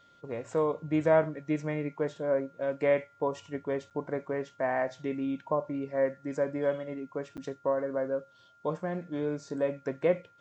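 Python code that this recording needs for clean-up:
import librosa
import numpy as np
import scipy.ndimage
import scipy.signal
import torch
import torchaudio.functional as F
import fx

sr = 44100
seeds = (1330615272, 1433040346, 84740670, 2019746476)

y = fx.notch(x, sr, hz=1400.0, q=30.0)
y = fx.fix_interpolate(y, sr, at_s=(3.9, 7.37), length_ms=7.8)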